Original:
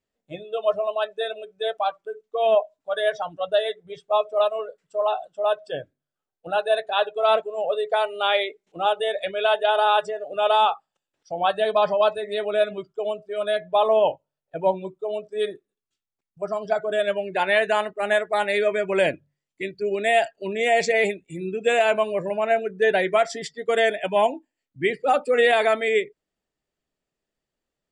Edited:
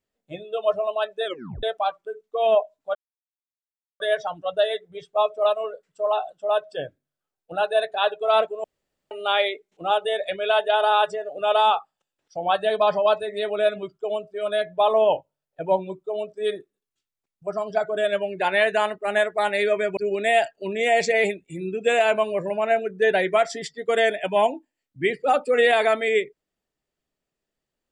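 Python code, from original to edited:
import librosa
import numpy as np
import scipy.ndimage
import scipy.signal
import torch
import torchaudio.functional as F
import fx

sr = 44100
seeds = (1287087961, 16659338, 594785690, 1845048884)

y = fx.edit(x, sr, fx.tape_stop(start_s=1.25, length_s=0.38),
    fx.insert_silence(at_s=2.95, length_s=1.05),
    fx.room_tone_fill(start_s=7.59, length_s=0.47),
    fx.cut(start_s=18.92, length_s=0.85), tone=tone)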